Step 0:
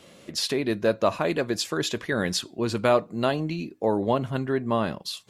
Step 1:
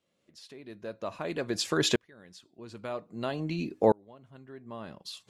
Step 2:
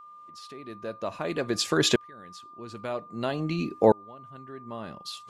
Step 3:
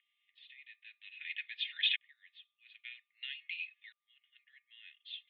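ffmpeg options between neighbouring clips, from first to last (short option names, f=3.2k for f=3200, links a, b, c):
-filter_complex "[0:a]lowpass=11k,asplit=2[a][b];[b]acompressor=threshold=-30dB:ratio=6,volume=0.5dB[c];[a][c]amix=inputs=2:normalize=0,aeval=exprs='val(0)*pow(10,-35*if(lt(mod(-0.51*n/s,1),2*abs(-0.51)/1000),1-mod(-0.51*n/s,1)/(2*abs(-0.51)/1000),(mod(-0.51*n/s,1)-2*abs(-0.51)/1000)/(1-2*abs(-0.51)/1000))/20)':c=same"
-af "aeval=exprs='val(0)+0.00355*sin(2*PI*1200*n/s)':c=same,volume=3.5dB"
-af "asuperpass=centerf=2600:order=12:qfactor=1.5,aecho=1:1:2.8:0.37"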